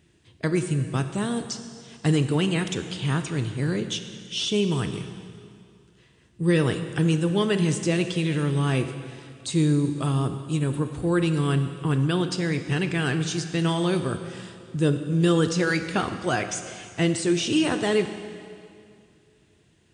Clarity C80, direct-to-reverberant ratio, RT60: 9.5 dB, 7.5 dB, 2.3 s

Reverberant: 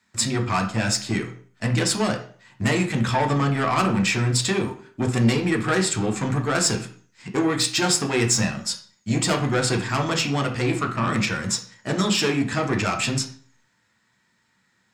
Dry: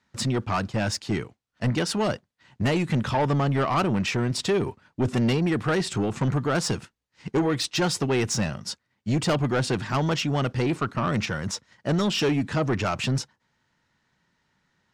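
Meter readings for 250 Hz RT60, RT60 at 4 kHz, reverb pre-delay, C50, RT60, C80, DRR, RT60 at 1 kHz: 0.55 s, 0.45 s, 6 ms, 10.0 dB, 0.45 s, 15.0 dB, 3.0 dB, 0.45 s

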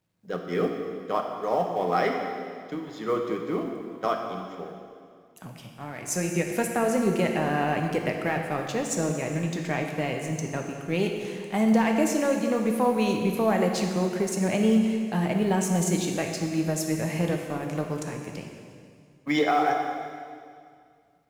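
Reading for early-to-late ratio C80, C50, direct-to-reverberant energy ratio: 5.0 dB, 4.0 dB, 2.0 dB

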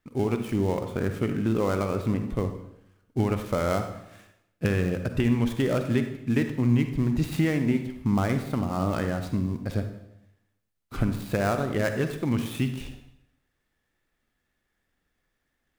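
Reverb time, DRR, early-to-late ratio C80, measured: 0.80 s, 7.0 dB, 10.5 dB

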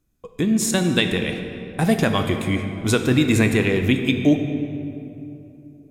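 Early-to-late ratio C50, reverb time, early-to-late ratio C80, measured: 7.0 dB, 2.9 s, 8.0 dB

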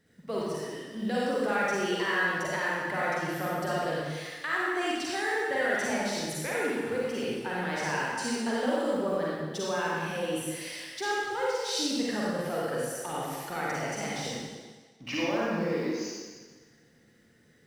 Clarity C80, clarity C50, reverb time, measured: -1.5 dB, -4.5 dB, 1.5 s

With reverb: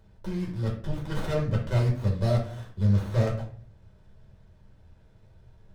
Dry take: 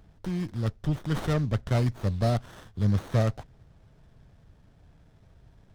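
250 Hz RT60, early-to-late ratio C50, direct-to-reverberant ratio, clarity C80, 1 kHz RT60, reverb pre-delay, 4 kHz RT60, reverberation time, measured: 0.60 s, 7.0 dB, -2.0 dB, 12.0 dB, 0.40 s, 5 ms, 0.35 s, 0.50 s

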